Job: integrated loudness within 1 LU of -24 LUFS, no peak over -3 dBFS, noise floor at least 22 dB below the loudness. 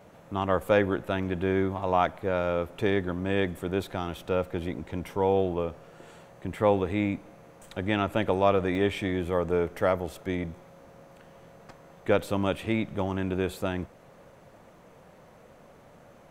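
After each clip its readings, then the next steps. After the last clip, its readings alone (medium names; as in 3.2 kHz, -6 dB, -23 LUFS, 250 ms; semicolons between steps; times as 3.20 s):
dropouts 2; longest dropout 1.2 ms; loudness -28.5 LUFS; peak level -9.0 dBFS; loudness target -24.0 LUFS
-> interpolate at 1.23/8.75 s, 1.2 ms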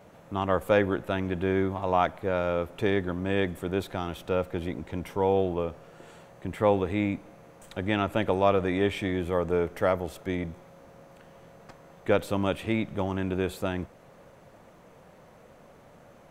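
dropouts 0; loudness -28.5 LUFS; peak level -9.0 dBFS; loudness target -24.0 LUFS
-> trim +4.5 dB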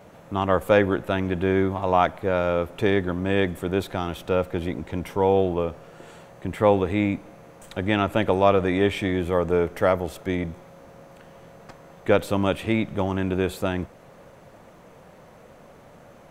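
loudness -24.0 LUFS; peak level -4.5 dBFS; noise floor -49 dBFS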